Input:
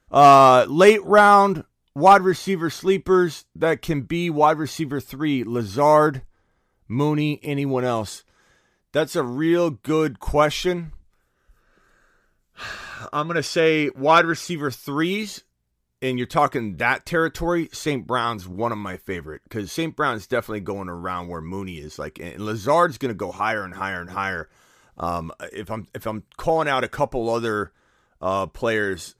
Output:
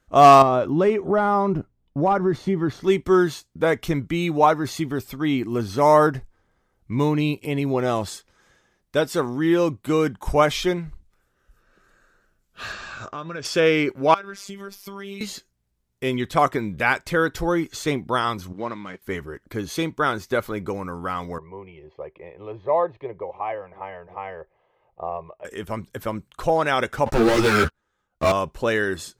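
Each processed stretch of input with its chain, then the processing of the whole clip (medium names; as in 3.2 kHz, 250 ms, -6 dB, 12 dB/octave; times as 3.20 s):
0.42–2.84 s: low-pass 2.8 kHz 6 dB/octave + tilt shelf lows +5 dB, about 700 Hz + compression 3:1, threshold -17 dBFS
12.72–13.45 s: steep low-pass 8 kHz 96 dB/octave + compression 4:1, threshold -30 dBFS
14.14–15.21 s: robot voice 198 Hz + compression 4:1, threshold -32 dBFS
18.53–19.02 s: companding laws mixed up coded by A + band-pass 180–4300 Hz + peaking EQ 760 Hz -6 dB 2.5 oct
21.38–25.45 s: low-pass 2.1 kHz 24 dB/octave + bass shelf 180 Hz -12 dB + static phaser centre 600 Hz, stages 4
27.06–28.32 s: waveshaping leveller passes 5 + three-phase chorus
whole clip: none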